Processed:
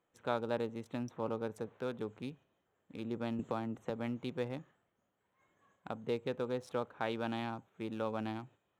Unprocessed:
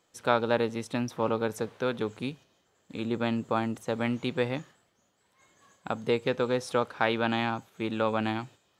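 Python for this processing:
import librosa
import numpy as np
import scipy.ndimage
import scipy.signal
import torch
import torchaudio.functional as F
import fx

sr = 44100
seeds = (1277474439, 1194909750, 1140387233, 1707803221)

y = fx.wiener(x, sr, points=9)
y = fx.dynamic_eq(y, sr, hz=2000.0, q=0.73, threshold_db=-43.0, ratio=4.0, max_db=-5)
y = fx.band_squash(y, sr, depth_pct=70, at=(3.39, 3.9))
y = F.gain(torch.from_numpy(y), -8.5).numpy()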